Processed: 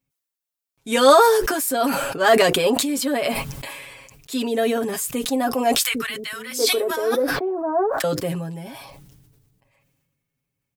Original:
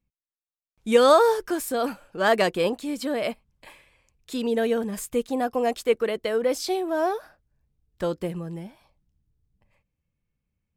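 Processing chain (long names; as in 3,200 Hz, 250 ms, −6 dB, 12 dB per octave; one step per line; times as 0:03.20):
high-pass filter 150 Hz 6 dB per octave
high-shelf EQ 7,500 Hz +7.5 dB
comb filter 7.3 ms, depth 84%
0:05.79–0:08.04: three-band delay without the direct sound highs, lows, mids 80/720 ms, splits 220/1,200 Hz
level that may fall only so fast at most 32 dB per second
level +1.5 dB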